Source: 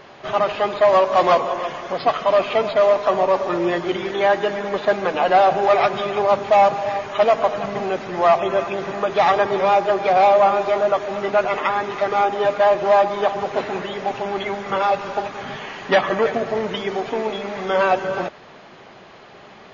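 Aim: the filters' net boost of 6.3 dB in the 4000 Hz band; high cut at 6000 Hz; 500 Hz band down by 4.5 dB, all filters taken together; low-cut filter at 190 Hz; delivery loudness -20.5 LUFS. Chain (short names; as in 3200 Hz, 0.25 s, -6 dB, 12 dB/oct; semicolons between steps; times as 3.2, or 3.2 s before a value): HPF 190 Hz; LPF 6000 Hz; bell 500 Hz -6 dB; bell 4000 Hz +9 dB; gain +1 dB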